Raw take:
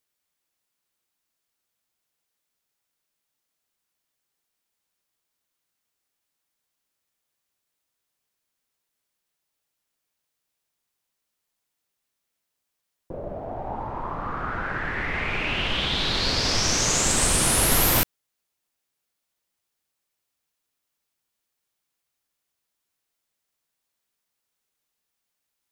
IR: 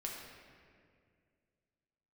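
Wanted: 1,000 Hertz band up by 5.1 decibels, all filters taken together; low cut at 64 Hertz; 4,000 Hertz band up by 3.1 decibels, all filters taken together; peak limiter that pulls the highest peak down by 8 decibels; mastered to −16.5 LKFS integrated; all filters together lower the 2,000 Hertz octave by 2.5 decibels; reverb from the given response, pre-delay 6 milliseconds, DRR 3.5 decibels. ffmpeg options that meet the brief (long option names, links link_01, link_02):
-filter_complex "[0:a]highpass=64,equalizer=frequency=1000:width_type=o:gain=8,equalizer=frequency=2000:width_type=o:gain=-7.5,equalizer=frequency=4000:width_type=o:gain=5.5,alimiter=limit=-15dB:level=0:latency=1,asplit=2[link_01][link_02];[1:a]atrim=start_sample=2205,adelay=6[link_03];[link_02][link_03]afir=irnorm=-1:irlink=0,volume=-3.5dB[link_04];[link_01][link_04]amix=inputs=2:normalize=0,volume=7dB"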